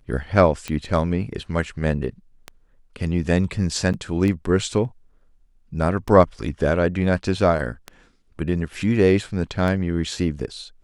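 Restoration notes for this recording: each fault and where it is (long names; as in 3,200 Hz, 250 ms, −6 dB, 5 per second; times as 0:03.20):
scratch tick 33 1/3 rpm −14 dBFS
0:03.93–0:03.94: drop-out 7.7 ms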